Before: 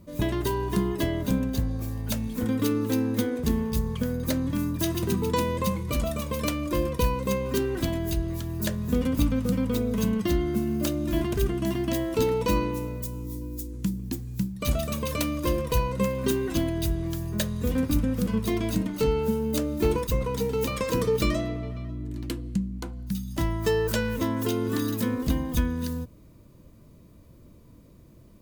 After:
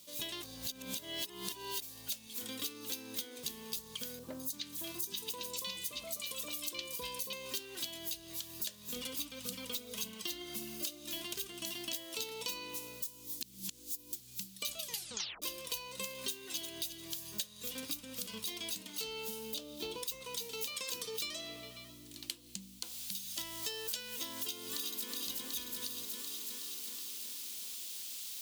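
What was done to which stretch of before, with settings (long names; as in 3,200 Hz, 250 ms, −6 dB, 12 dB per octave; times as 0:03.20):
0:00.43–0:01.82: reverse
0:04.19–0:07.33: three-band delay without the direct sound lows, highs, mids 200/310 ms, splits 1,400/5,200 Hz
0:08.96–0:11.04: phase shifter 1.8 Hz, delay 3.7 ms, feedback 36%
0:13.41–0:14.13: reverse
0:14.79: tape stop 0.63 s
0:16.17–0:16.70: delay throw 350 ms, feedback 20%, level −11 dB
0:19.54–0:20.03: drawn EQ curve 780 Hz 0 dB, 2,100 Hz −10 dB, 3,300 Hz −1 dB, 7,700 Hz −13 dB
0:22.84: noise floor change −65 dB −50 dB
0:24.38–0:25.10: delay throw 370 ms, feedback 65%, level −2.5 dB
whole clip: high-pass filter 1,400 Hz 6 dB per octave; high shelf with overshoot 2,400 Hz +10.5 dB, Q 1.5; downward compressor 4 to 1, threshold −34 dBFS; level −4 dB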